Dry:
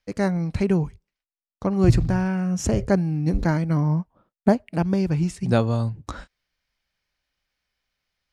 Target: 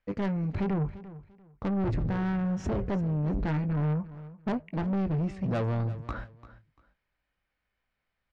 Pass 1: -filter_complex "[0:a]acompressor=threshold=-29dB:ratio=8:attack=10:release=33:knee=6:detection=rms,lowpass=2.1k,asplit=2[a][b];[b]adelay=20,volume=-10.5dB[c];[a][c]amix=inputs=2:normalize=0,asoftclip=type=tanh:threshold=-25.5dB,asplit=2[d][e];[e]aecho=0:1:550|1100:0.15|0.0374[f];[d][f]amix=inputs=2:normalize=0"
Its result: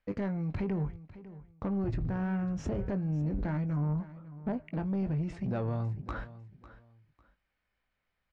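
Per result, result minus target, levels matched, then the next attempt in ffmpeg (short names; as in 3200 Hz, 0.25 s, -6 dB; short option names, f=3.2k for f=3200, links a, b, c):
echo 0.206 s late; compressor: peak gain reduction +10 dB
-filter_complex "[0:a]acompressor=threshold=-29dB:ratio=8:attack=10:release=33:knee=6:detection=rms,lowpass=2.1k,asplit=2[a][b];[b]adelay=20,volume=-10.5dB[c];[a][c]amix=inputs=2:normalize=0,asoftclip=type=tanh:threshold=-25.5dB,asplit=2[d][e];[e]aecho=0:1:344|688:0.15|0.0374[f];[d][f]amix=inputs=2:normalize=0"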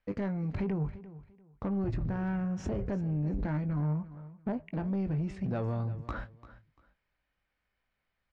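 compressor: peak gain reduction +10 dB
-filter_complex "[0:a]acompressor=threshold=-17.5dB:ratio=8:attack=10:release=33:knee=6:detection=rms,lowpass=2.1k,asplit=2[a][b];[b]adelay=20,volume=-10.5dB[c];[a][c]amix=inputs=2:normalize=0,asoftclip=type=tanh:threshold=-25.5dB,asplit=2[d][e];[e]aecho=0:1:344|688:0.15|0.0374[f];[d][f]amix=inputs=2:normalize=0"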